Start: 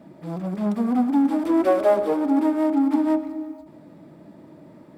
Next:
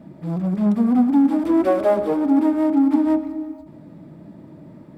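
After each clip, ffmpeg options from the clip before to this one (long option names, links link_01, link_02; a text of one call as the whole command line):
ffmpeg -i in.wav -af "bass=frequency=250:gain=9,treble=frequency=4000:gain=-2" out.wav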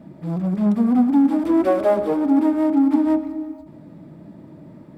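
ffmpeg -i in.wav -af anull out.wav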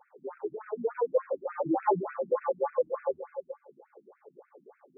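ffmpeg -i in.wav -af "highpass=160,lowpass=2800,aeval=exprs='val(0)*sin(2*PI*230*n/s)':channel_layout=same,afftfilt=real='re*between(b*sr/1024,210*pow(1900/210,0.5+0.5*sin(2*PI*3.4*pts/sr))/1.41,210*pow(1900/210,0.5+0.5*sin(2*PI*3.4*pts/sr))*1.41)':imag='im*between(b*sr/1024,210*pow(1900/210,0.5+0.5*sin(2*PI*3.4*pts/sr))/1.41,210*pow(1900/210,0.5+0.5*sin(2*PI*3.4*pts/sr))*1.41)':win_size=1024:overlap=0.75" out.wav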